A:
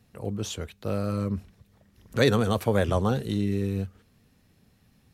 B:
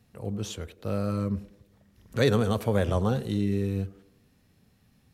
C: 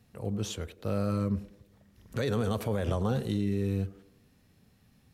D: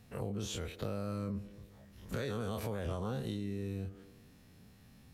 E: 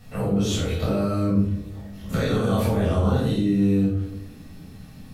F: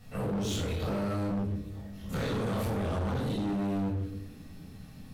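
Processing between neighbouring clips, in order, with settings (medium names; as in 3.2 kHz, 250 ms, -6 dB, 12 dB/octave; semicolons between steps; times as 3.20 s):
band-passed feedback delay 95 ms, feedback 54%, band-pass 410 Hz, level -16 dB; harmonic-percussive split percussive -4 dB
peak limiter -20 dBFS, peak gain reduction 10.5 dB
every event in the spectrogram widened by 60 ms; compression 4:1, threshold -36 dBFS, peak gain reduction 12 dB
simulated room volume 750 m³, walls furnished, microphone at 6.6 m; trim +5 dB
hard clipper -23.5 dBFS, distortion -8 dB; trim -5 dB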